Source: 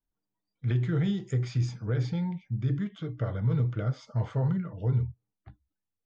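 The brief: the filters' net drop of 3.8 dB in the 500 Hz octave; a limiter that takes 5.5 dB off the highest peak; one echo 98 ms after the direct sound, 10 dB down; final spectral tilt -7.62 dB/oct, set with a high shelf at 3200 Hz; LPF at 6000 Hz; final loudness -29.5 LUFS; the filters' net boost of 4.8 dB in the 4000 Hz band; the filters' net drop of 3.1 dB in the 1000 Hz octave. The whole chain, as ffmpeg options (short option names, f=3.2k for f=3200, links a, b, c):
-af "lowpass=6k,equalizer=f=500:t=o:g=-4,equalizer=f=1k:t=o:g=-4,highshelf=f=3.2k:g=5,equalizer=f=4k:t=o:g=3.5,alimiter=limit=-24dB:level=0:latency=1,aecho=1:1:98:0.316,volume=3dB"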